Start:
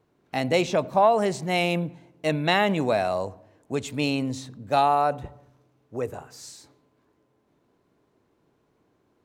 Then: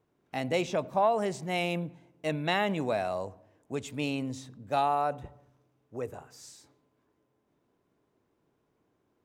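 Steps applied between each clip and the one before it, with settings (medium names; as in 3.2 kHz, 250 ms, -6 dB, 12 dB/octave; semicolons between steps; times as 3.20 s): band-stop 4.2 kHz, Q 14; trim -6.5 dB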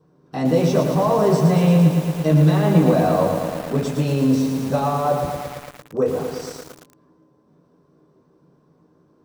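peak limiter -25 dBFS, peak gain reduction 11 dB; reverberation, pre-delay 3 ms, DRR -7.5 dB; bit-crushed delay 113 ms, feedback 80%, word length 6-bit, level -5.5 dB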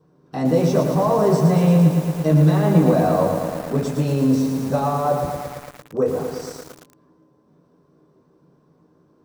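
dynamic bell 3 kHz, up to -5 dB, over -47 dBFS, Q 1.3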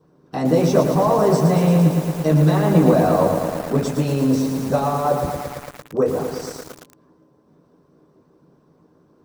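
harmonic-percussive split percussive +6 dB; trim -1 dB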